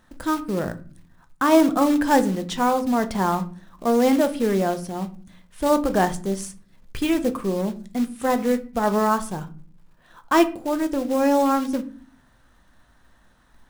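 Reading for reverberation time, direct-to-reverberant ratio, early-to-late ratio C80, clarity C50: 0.45 s, 9.0 dB, 21.0 dB, 16.5 dB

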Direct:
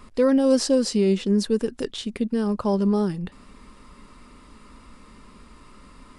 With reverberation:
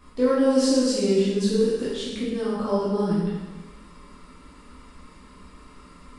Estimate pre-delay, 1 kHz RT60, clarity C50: 5 ms, 1.3 s, -1.5 dB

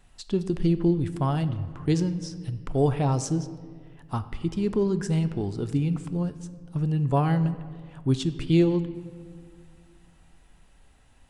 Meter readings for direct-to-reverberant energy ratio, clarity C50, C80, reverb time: 11.0 dB, 13.5 dB, 14.5 dB, 1.8 s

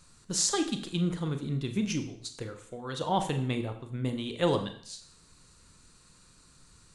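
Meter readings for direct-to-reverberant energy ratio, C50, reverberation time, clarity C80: 6.5 dB, 10.5 dB, 0.60 s, 13.5 dB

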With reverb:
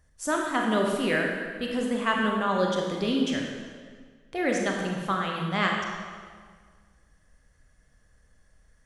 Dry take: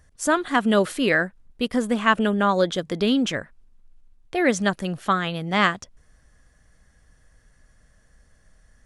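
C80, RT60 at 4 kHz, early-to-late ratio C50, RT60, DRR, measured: 3.0 dB, 1.4 s, 2.0 dB, 1.7 s, 0.0 dB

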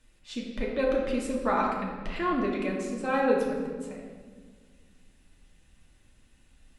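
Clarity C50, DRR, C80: 2.5 dB, -2.5 dB, 4.0 dB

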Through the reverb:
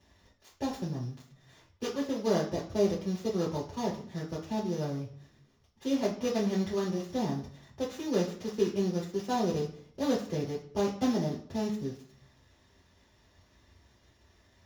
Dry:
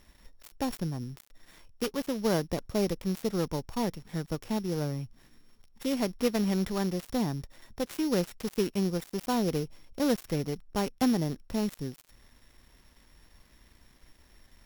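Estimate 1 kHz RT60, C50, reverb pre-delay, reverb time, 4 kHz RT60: 0.55 s, 7.5 dB, 3 ms, 0.55 s, 0.50 s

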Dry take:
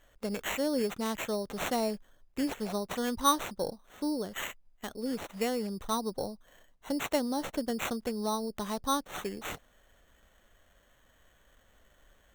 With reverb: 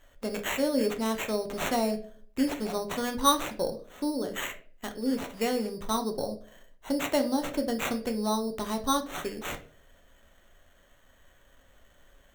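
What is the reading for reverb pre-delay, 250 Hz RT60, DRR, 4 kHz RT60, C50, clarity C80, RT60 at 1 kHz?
3 ms, 0.60 s, 5.0 dB, 0.30 s, 12.5 dB, 18.0 dB, 0.40 s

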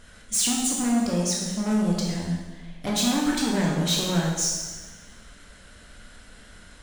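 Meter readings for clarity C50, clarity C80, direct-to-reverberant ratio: 1.0 dB, 3.5 dB, -2.5 dB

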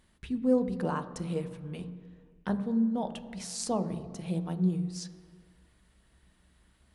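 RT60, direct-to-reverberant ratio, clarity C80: 2.1 s, 9.0 dB, 14.0 dB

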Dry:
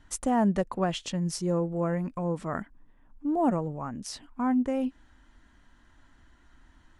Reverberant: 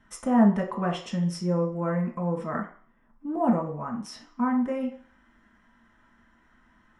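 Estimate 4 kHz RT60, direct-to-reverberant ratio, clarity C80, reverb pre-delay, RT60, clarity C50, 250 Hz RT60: 0.60 s, -0.5 dB, 12.5 dB, 3 ms, 0.50 s, 8.0 dB, 0.40 s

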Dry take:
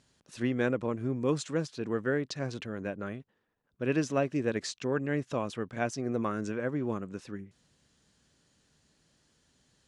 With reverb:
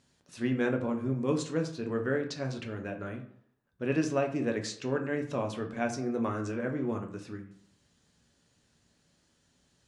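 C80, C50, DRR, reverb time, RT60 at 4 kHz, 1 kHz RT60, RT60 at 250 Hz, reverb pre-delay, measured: 14.0 dB, 10.5 dB, 3.0 dB, 0.60 s, 0.35 s, 0.60 s, 0.65 s, 6 ms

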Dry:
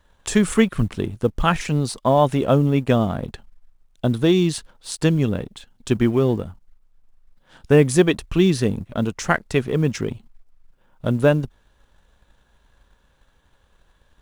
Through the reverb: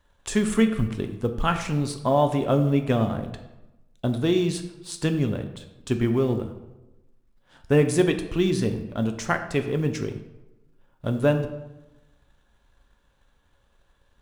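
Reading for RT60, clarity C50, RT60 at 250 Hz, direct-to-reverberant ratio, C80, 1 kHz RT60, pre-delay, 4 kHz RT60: 1.0 s, 10.0 dB, 1.2 s, 6.0 dB, 12.0 dB, 1.0 s, 3 ms, 0.65 s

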